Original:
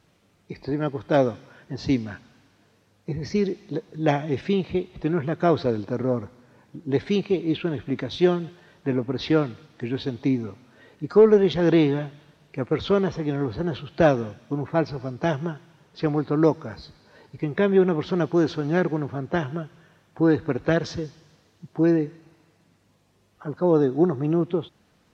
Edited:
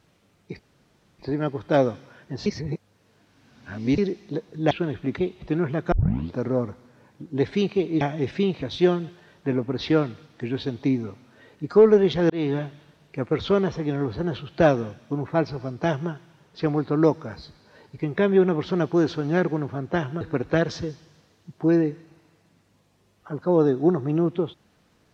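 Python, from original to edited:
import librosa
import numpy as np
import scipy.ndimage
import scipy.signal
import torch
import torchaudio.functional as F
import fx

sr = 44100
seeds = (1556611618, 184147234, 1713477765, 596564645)

y = fx.edit(x, sr, fx.insert_room_tone(at_s=0.59, length_s=0.6),
    fx.reverse_span(start_s=1.86, length_s=1.52),
    fx.swap(start_s=4.11, length_s=0.61, other_s=7.55, other_length_s=0.47),
    fx.tape_start(start_s=5.46, length_s=0.42),
    fx.fade_in_span(start_s=11.7, length_s=0.25),
    fx.cut(start_s=19.61, length_s=0.75), tone=tone)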